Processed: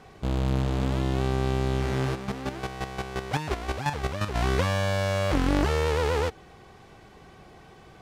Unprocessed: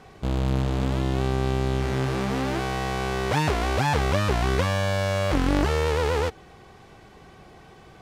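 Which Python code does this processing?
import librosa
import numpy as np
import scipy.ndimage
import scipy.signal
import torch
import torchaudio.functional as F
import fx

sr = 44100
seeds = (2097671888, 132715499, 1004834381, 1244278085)

y = fx.chopper(x, sr, hz=5.7, depth_pct=65, duty_pct=20, at=(2.14, 4.34), fade=0.02)
y = y * librosa.db_to_amplitude(-1.5)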